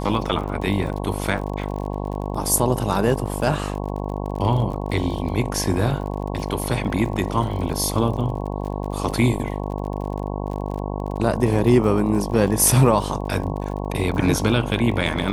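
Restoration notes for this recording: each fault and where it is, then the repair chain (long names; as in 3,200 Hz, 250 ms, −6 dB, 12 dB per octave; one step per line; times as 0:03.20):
mains buzz 50 Hz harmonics 22 −27 dBFS
surface crackle 46 per second −30 dBFS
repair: click removal
hum removal 50 Hz, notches 22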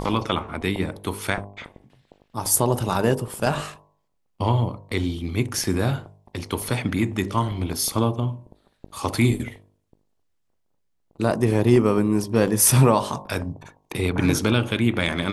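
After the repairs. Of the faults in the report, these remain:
none of them is left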